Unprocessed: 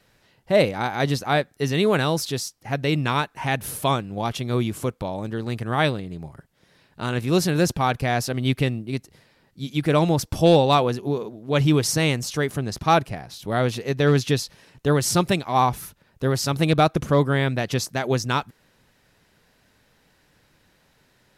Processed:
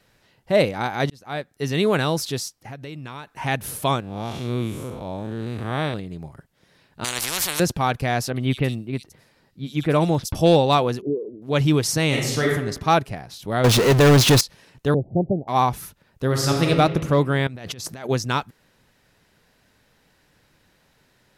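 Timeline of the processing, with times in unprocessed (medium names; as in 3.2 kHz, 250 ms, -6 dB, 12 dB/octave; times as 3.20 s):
1.10–1.78 s: fade in
2.60–3.27 s: compression 4:1, threshold -34 dBFS
4.00–5.94 s: spectral blur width 170 ms
7.04–7.60 s: spectrum-flattening compressor 10:1
8.30–10.35 s: bands offset in time lows, highs 60 ms, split 3.5 kHz
11.01–11.42 s: resonances exaggerated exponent 3
12.08–12.51 s: reverb throw, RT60 0.82 s, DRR -2.5 dB
13.64–14.41 s: power-law waveshaper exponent 0.35
14.94–15.48 s: steep low-pass 770 Hz 72 dB/octave
16.26–16.66 s: reverb throw, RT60 1.8 s, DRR -0.5 dB
17.47–18.09 s: compressor with a negative ratio -35 dBFS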